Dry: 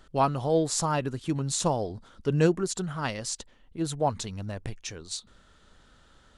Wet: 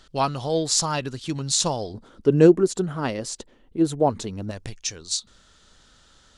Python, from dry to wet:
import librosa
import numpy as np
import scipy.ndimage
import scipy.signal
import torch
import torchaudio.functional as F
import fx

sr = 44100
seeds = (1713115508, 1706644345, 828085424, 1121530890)

y = fx.peak_eq(x, sr, hz=fx.steps((0.0, 4700.0), (1.94, 350.0), (4.51, 5800.0)), db=11.0, octaves=1.7)